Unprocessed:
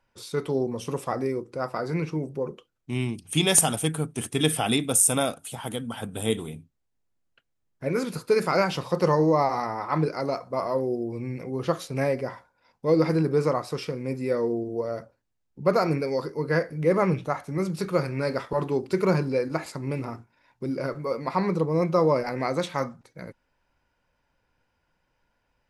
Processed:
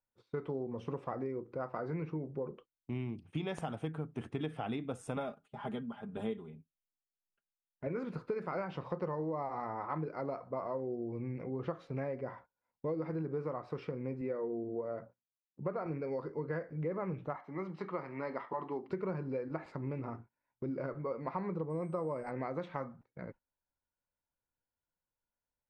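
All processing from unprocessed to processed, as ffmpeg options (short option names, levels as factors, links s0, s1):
-filter_complex "[0:a]asettb=1/sr,asplit=3[s0][s1][s2];[s0]atrim=end=5.164[s3];[s1]atrim=start=5.16:end=7.87,asetpts=PTS-STARTPTS,afade=t=in:d=0.004:c=qsin,afade=t=out:st=2.706:d=0.004:c=qsin,aecho=1:1:4.9:0.7,atrim=end_sample=119511,tremolo=f=1.8:d=0.65[s4];[s2]atrim=start=7.866[s5];[s3][s4]acrossfade=d=0.004:c1=hsin:c2=qsin[s6];[s6][s5]acrossfade=d=0.004:c1=qsin:c2=hsin,asettb=1/sr,asplit=3[s7][s8][s9];[s7]atrim=end=14.214[s10];[s8]atrim=start=14.21:end=15.86,asetpts=PTS-STARTPTS,afade=t=in:d=0.004:c=qsin,afade=t=out:st=1.646:d=0.004:c=qsin,highpass=110,lowpass=3800,bandreject=f=60:t=h:w=6,bandreject=f=120:t=h:w=6,bandreject=f=180:t=h:w=6,bandreject=f=240:t=h:w=6[s11];[s9]atrim=start=15.856[s12];[s10][s11]acrossfade=d=0.004:c1=hsin:c2=qsin[s13];[s13][s12]acrossfade=d=0.004:c1=qsin:c2=hsin,asettb=1/sr,asplit=3[s14][s15][s16];[s14]atrim=end=17.364[s17];[s15]atrim=start=17.36:end=18.9,asetpts=PTS-STARTPTS,afade=t=in:d=0.004:c=qsin,afade=t=out:st=1.536:d=0.004:c=qsin,highpass=330,lowpass=5300,aecho=1:1:1:0.47,atrim=end_sample=67914[s18];[s16]atrim=start=18.896[s19];[s17][s18]acrossfade=d=0.004:c1=hsin:c2=qsin[s20];[s20][s19]acrossfade=d=0.004:c1=qsin:c2=hsin,asettb=1/sr,asplit=3[s21][s22][s23];[s21]atrim=end=21.704[s24];[s22]atrim=start=21.7:end=22.31,asetpts=PTS-STARTPTS,afade=t=in:d=0.004:c=qsin,afade=t=out:st=0.606:d=0.004:c=qsin,aeval=exprs='val(0)+0.0316*sin(2*PI*8200*n/s)':c=same,highshelf=f=8800:g=-4[s25];[s23]atrim=start=22.306[s26];[s24][s25]acrossfade=d=0.004:c1=hsin:c2=qsin[s27];[s27][s26]acrossfade=d=0.004:c1=qsin:c2=hsin,lowpass=1800,agate=range=0.126:threshold=0.00447:ratio=16:detection=peak,acompressor=threshold=0.0355:ratio=6,volume=0.562"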